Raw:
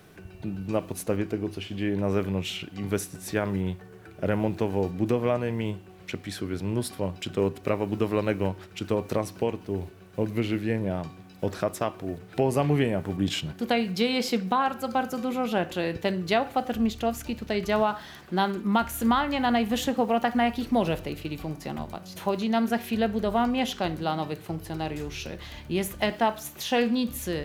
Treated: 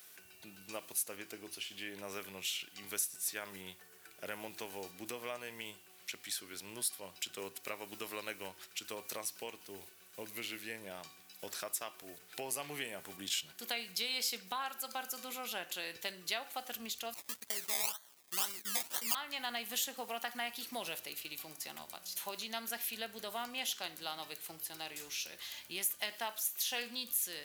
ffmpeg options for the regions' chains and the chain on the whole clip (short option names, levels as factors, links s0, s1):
-filter_complex "[0:a]asettb=1/sr,asplit=3[s0][s1][s2];[s0]atrim=end=17.144[s3];[s1]atrim=start=17.14:end=19.15,asetpts=PTS-STARTPTS,afade=t=in:d=0.004:c=qsin,afade=t=out:st=2.006:d=0.004:c=qsin,agate=range=0.316:threshold=0.0158:ratio=16:release=100:detection=peak,equalizer=f=10000:t=o:w=0.57:g=12,acrusher=samples=24:mix=1:aa=0.000001:lfo=1:lforange=14.4:lforate=2[s4];[s2]atrim=start=19.146[s5];[s3][s4]acrossfade=d=0.004:c1=hsin:c2=qsin[s6];[s6][s5]acrossfade=d=0.004:c1=qsin:c2=hsin,aderivative,acompressor=threshold=0.00447:ratio=1.5,volume=2"